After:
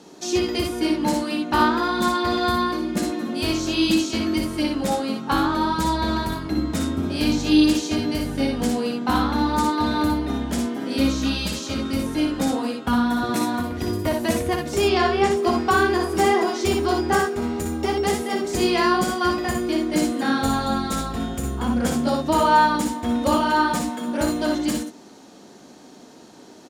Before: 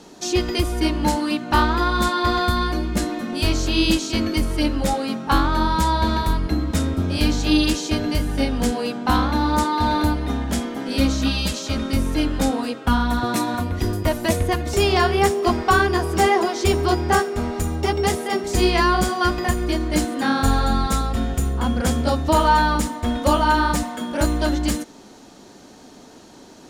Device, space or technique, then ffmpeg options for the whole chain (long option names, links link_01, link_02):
filter by subtraction: -filter_complex "[0:a]asettb=1/sr,asplit=3[link_01][link_02][link_03];[link_01]atrim=end=14.824[link_04];[link_02]atrim=start=14.82:end=15.31,asetpts=PTS-STARTPTS,afade=type=in:duration=0.004:curve=qsin,afade=type=out:start_time=0.486:duration=0.004:curve=qsin,lowpass=6500[link_05];[link_03]atrim=start=15.306[link_06];[link_04][link_05]acrossfade=duration=0.004:curve1=hsin:curve2=qsin[link_07];[link_07][link_06]acrossfade=duration=0.004:curve1=qsin:curve2=hsin,asplit=2[link_08][link_09];[link_09]lowpass=230,volume=-1[link_10];[link_08][link_10]amix=inputs=2:normalize=0,aecho=1:1:59|72:0.562|0.299,volume=-3.5dB"